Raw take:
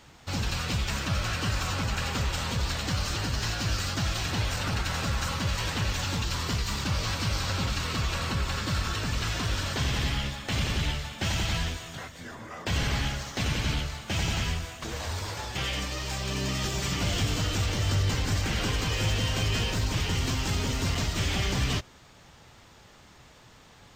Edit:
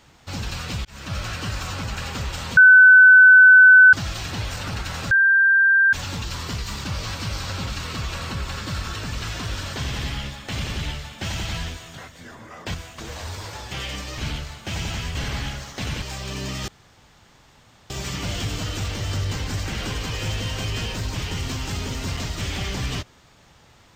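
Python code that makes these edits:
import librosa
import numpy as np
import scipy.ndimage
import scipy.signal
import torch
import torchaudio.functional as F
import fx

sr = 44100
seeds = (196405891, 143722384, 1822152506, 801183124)

y = fx.edit(x, sr, fx.fade_in_span(start_s=0.85, length_s=0.31),
    fx.bleep(start_s=2.57, length_s=1.36, hz=1510.0, db=-6.0),
    fx.bleep(start_s=5.11, length_s=0.82, hz=1580.0, db=-12.5),
    fx.swap(start_s=12.74, length_s=0.87, other_s=14.58, other_length_s=1.44),
    fx.insert_room_tone(at_s=16.68, length_s=1.22), tone=tone)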